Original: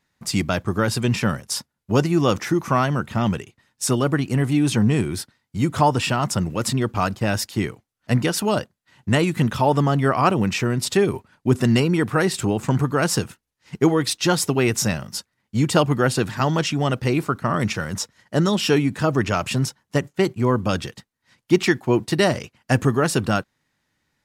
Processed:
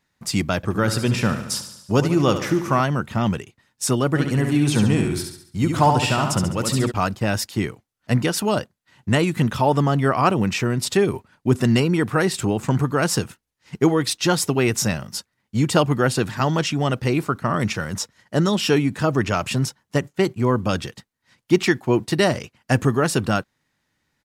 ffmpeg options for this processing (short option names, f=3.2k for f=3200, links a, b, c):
-filter_complex "[0:a]asettb=1/sr,asplit=3[a][b][c];[a]atrim=end=0.564[d];[b]atrim=start=0.56:end=2.81,asetpts=PTS-STARTPTS,afade=t=in:d=0.004:c=qsin,afade=t=out:st=2.246:d=0.004:c=qsin,aecho=1:1:73|146|219|292|365|438|511:0.299|0.176|0.104|0.0613|0.0362|0.0213|0.0126,atrim=end_sample=99225[e];[c]atrim=start=2.806[f];[d][e]acrossfade=d=0.004:c1=hsin:c2=qsin[g];[g][f]acrossfade=d=0.004:c1=qsin:c2=hsin,asplit=3[h][i][j];[h]afade=t=out:st=4.14:d=0.02[k];[i]aecho=1:1:69|138|207|276|345|414:0.562|0.253|0.114|0.0512|0.0231|0.0104,afade=t=in:st=4.14:d=0.02,afade=t=out:st=6.9:d=0.02[l];[j]afade=t=in:st=6.9:d=0.02[m];[k][l][m]amix=inputs=3:normalize=0"